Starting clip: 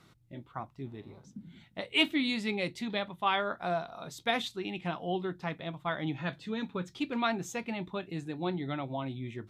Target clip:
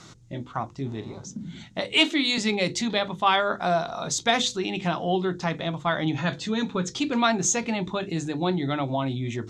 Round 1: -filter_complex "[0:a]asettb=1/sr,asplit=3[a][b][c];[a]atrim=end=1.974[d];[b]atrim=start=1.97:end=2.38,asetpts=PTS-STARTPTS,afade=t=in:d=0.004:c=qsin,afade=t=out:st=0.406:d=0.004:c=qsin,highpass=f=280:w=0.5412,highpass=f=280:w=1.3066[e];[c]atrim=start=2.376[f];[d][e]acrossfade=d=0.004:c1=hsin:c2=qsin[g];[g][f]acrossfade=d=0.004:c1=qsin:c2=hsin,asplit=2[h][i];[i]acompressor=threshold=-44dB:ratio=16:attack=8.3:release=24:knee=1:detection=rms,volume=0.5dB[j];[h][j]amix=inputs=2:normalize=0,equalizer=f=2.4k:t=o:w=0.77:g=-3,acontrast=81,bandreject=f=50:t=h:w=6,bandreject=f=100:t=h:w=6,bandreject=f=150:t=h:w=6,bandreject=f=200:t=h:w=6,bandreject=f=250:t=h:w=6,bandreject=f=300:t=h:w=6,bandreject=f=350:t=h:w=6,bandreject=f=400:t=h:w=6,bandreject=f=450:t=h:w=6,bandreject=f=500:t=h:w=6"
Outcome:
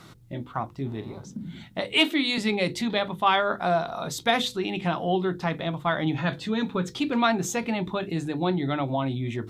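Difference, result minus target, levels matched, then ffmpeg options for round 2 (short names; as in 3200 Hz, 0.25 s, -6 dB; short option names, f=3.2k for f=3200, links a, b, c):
8000 Hz band -8.0 dB
-filter_complex "[0:a]asettb=1/sr,asplit=3[a][b][c];[a]atrim=end=1.974[d];[b]atrim=start=1.97:end=2.38,asetpts=PTS-STARTPTS,afade=t=in:d=0.004:c=qsin,afade=t=out:st=0.406:d=0.004:c=qsin,highpass=f=280:w=0.5412,highpass=f=280:w=1.3066[e];[c]atrim=start=2.376[f];[d][e]acrossfade=d=0.004:c1=hsin:c2=qsin[g];[g][f]acrossfade=d=0.004:c1=qsin:c2=hsin,asplit=2[h][i];[i]acompressor=threshold=-44dB:ratio=16:attack=8.3:release=24:knee=1:detection=rms,volume=0.5dB[j];[h][j]amix=inputs=2:normalize=0,lowpass=f=6.7k:t=q:w=3.4,equalizer=f=2.4k:t=o:w=0.77:g=-3,acontrast=81,bandreject=f=50:t=h:w=6,bandreject=f=100:t=h:w=6,bandreject=f=150:t=h:w=6,bandreject=f=200:t=h:w=6,bandreject=f=250:t=h:w=6,bandreject=f=300:t=h:w=6,bandreject=f=350:t=h:w=6,bandreject=f=400:t=h:w=6,bandreject=f=450:t=h:w=6,bandreject=f=500:t=h:w=6"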